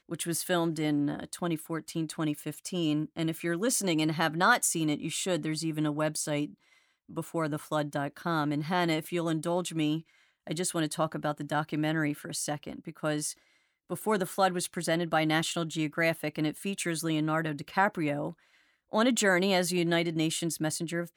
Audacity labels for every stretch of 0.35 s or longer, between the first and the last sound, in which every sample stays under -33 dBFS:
6.450000	7.170000	silence
9.990000	10.470000	silence
13.310000	13.910000	silence
18.300000	18.930000	silence